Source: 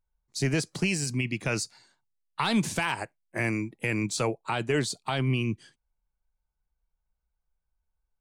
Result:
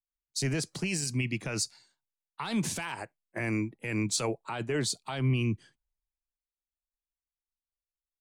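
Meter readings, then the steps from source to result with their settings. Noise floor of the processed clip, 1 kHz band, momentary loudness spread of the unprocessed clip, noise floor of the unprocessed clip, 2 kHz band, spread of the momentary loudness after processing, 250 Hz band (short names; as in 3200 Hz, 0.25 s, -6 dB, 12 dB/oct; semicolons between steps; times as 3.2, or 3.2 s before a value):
under -85 dBFS, -6.5 dB, 8 LU, -83 dBFS, -5.5 dB, 9 LU, -3.0 dB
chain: limiter -22 dBFS, peak gain reduction 8.5 dB; three-band expander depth 70%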